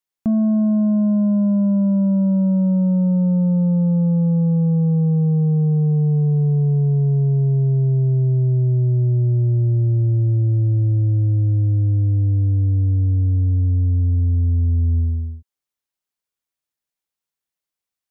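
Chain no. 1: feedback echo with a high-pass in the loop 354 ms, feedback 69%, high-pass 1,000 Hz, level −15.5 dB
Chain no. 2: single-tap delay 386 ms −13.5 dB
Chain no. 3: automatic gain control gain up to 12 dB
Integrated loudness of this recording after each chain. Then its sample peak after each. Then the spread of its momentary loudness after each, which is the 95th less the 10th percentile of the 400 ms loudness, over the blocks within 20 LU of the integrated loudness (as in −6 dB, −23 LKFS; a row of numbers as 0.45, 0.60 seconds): −17.5, −17.5, −7.0 LKFS; −13.5, −12.5, −3.5 dBFS; 1, 1, 1 LU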